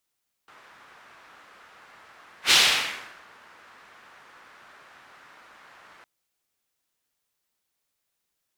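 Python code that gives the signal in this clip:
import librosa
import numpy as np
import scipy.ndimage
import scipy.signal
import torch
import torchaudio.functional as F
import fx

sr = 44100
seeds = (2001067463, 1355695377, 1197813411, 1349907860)

y = fx.whoosh(sr, seeds[0], length_s=5.56, peak_s=2.03, rise_s=0.1, fall_s=0.8, ends_hz=1400.0, peak_hz=3500.0, q=1.5, swell_db=35.5)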